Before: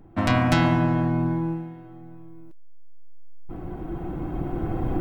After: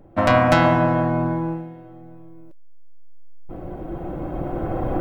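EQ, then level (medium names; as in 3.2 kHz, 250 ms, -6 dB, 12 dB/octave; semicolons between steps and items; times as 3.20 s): peaking EQ 560 Hz +13 dB 0.42 oct; dynamic bell 1.2 kHz, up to +7 dB, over -37 dBFS, Q 0.82; 0.0 dB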